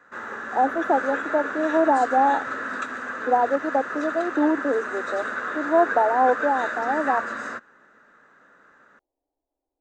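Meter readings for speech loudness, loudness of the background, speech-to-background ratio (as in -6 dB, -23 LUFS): -23.0 LUFS, -29.5 LUFS, 6.5 dB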